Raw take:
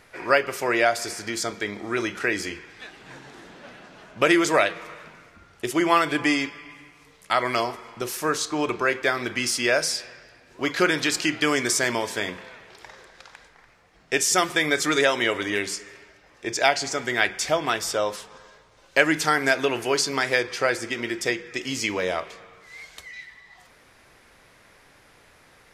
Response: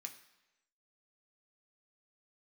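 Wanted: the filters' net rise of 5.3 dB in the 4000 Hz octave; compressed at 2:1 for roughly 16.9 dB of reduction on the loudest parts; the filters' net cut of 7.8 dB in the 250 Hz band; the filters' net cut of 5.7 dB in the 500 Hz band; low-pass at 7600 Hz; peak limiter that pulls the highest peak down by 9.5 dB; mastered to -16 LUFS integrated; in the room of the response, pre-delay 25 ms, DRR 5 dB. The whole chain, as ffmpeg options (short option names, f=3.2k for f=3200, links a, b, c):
-filter_complex "[0:a]lowpass=7.6k,equalizer=f=250:t=o:g=-9,equalizer=f=500:t=o:g=-5,equalizer=f=4k:t=o:g=7.5,acompressor=threshold=-47dB:ratio=2,alimiter=level_in=3.5dB:limit=-24dB:level=0:latency=1,volume=-3.5dB,asplit=2[a][b];[1:a]atrim=start_sample=2205,adelay=25[c];[b][c]afir=irnorm=-1:irlink=0,volume=-0.5dB[d];[a][d]amix=inputs=2:normalize=0,volume=23.5dB"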